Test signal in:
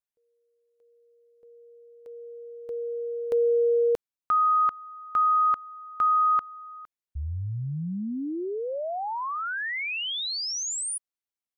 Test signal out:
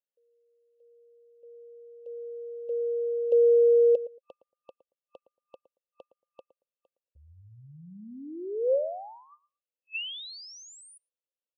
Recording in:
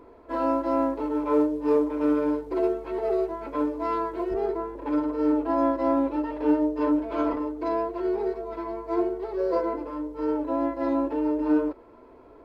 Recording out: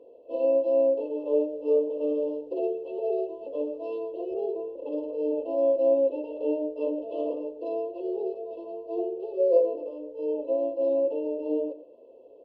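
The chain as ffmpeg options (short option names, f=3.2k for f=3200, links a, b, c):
-filter_complex "[0:a]afftfilt=real='re*(1-between(b*sr/4096,1200,2600))':imag='im*(1-between(b*sr/4096,1200,2600))':win_size=4096:overlap=0.75,asplit=3[a][b][c];[a]bandpass=f=530:t=q:w=8,volume=0dB[d];[b]bandpass=f=1.84k:t=q:w=8,volume=-6dB[e];[c]bandpass=f=2.48k:t=q:w=8,volume=-9dB[f];[d][e][f]amix=inputs=3:normalize=0,asplit=2[g][h];[h]adelay=114,lowpass=f=870:p=1,volume=-14dB,asplit=2[i][j];[j]adelay=114,lowpass=f=870:p=1,volume=0.18[k];[g][i][k]amix=inputs=3:normalize=0,volume=9dB"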